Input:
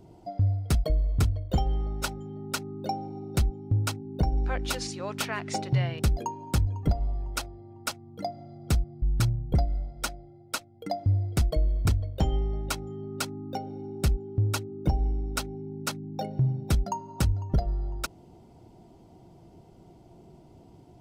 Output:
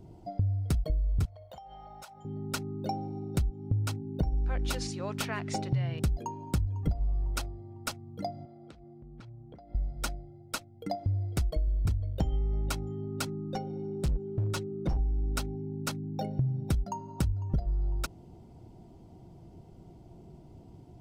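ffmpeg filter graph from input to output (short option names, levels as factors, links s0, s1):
-filter_complex "[0:a]asettb=1/sr,asplit=3[s0][s1][s2];[s0]atrim=end=1.254[s3];[s1]atrim=start=1.25:end=2.25,asetpts=PTS-STARTPTS,afade=t=in:d=0.004:c=qsin,afade=t=out:st=0.996:d=0.004:c=qsin,highpass=130,lowshelf=f=480:t=q:w=3:g=-13,acompressor=threshold=0.00891:ratio=10:attack=3.2:release=140:knee=1:detection=peak[s4];[s2]atrim=start=2.246[s5];[s3][s4]acrossfade=d=0.004:c1=hsin:c2=qsin[s6];[s6][s5]acrossfade=d=0.004:c1=qsin:c2=hsin,asettb=1/sr,asplit=3[s7][s8][s9];[s7]atrim=end=8.454[s10];[s8]atrim=start=8.45:end=9.75,asetpts=PTS-STARTPTS,afade=t=in:d=0.004:c=qsin,afade=t=out:st=1.296:d=0.004:c=qsin,highpass=270,lowpass=3500,acompressor=threshold=0.00501:ratio=8:attack=3.2:release=140:knee=1:detection=peak[s11];[s9]atrim=start=9.746[s12];[s10][s11]acrossfade=d=0.004:c1=hsin:c2=qsin[s13];[s13][s12]acrossfade=d=0.004:c1=qsin:c2=hsin,asettb=1/sr,asplit=3[s14][s15][s16];[s14]atrim=end=10.954[s17];[s15]atrim=start=10.95:end=11.68,asetpts=PTS-STARTPTS,afade=t=in:d=0.004:c=qsin,afade=t=out:st=0.726:d=0.004:c=qsin,equalizer=f=130:w=0.59:g=-6.5,asoftclip=type=hard:threshold=0.112,acompressor=mode=upward:threshold=0.0141:ratio=2.5:attack=3.2:release=140:knee=2.83:detection=peak[s18];[s16]atrim=start=11.676[s19];[s17][s18]acrossfade=d=0.004:c1=hsin:c2=qsin[s20];[s20][s19]acrossfade=d=0.004:c1=qsin:c2=hsin,asettb=1/sr,asplit=3[s21][s22][s23];[s21]atrim=end=13.264[s24];[s22]atrim=start=13.26:end=14.97,asetpts=PTS-STARTPTS,afade=t=in:d=0.004:c=qsin,afade=t=out:st=1.706:d=0.004:c=qsin,lowpass=9000,aecho=1:1:5.5:0.65,atrim=end_sample=75411,asoftclip=type=hard:threshold=0.0531[s25];[s23]atrim=start=14.966[s26];[s24][s25]acrossfade=d=0.004:c1=hsin:c2=qsin[s27];[s27][s26]acrossfade=d=0.004:c1=qsin:c2=hsin,lowshelf=f=220:g=8.5,acompressor=threshold=0.0794:ratio=6,volume=0.668"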